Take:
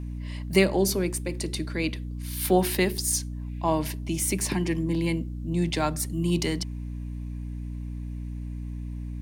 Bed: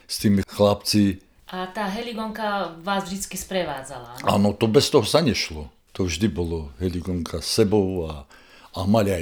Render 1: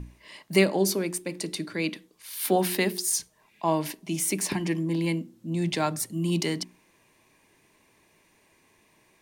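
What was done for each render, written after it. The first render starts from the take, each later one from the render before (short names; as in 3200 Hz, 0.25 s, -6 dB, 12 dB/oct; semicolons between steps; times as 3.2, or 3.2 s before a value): notches 60/120/180/240/300/360 Hz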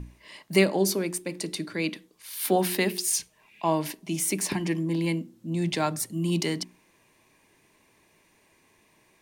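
2.88–3.68 bell 2600 Hz +9 dB 0.63 oct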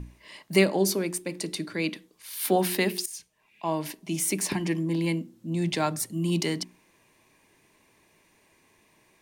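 3.06–4.16 fade in, from -16.5 dB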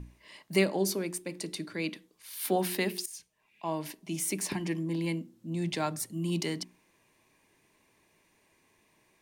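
gain -5 dB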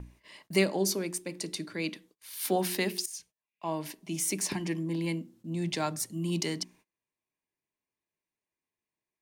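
gate -58 dBFS, range -26 dB; dynamic EQ 6000 Hz, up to +5 dB, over -48 dBFS, Q 1.4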